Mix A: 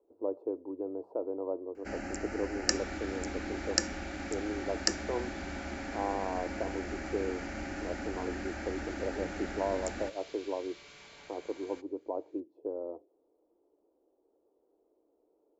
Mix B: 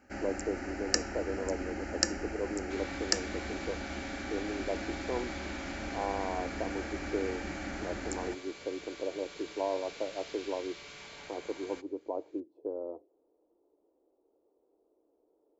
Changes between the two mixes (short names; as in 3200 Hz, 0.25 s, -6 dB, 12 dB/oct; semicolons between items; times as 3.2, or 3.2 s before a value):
first sound: entry -1.75 s; second sound +5.0 dB